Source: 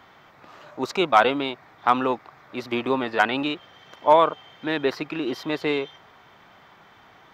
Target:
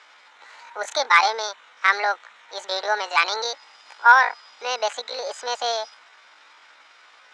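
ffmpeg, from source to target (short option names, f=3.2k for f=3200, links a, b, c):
-af "highpass=f=240:w=0.5412,highpass=f=240:w=1.3066,equalizer=f=240:t=q:w=4:g=-6,equalizer=f=550:t=q:w=4:g=9,equalizer=f=900:t=q:w=4:g=6,equalizer=f=1.4k:t=q:w=4:g=4,equalizer=f=2.5k:t=q:w=4:g=8,equalizer=f=4.4k:t=q:w=4:g=5,lowpass=f=5.8k:w=0.5412,lowpass=f=5.8k:w=1.3066,asetrate=70004,aresample=44100,atempo=0.629961,volume=-3dB"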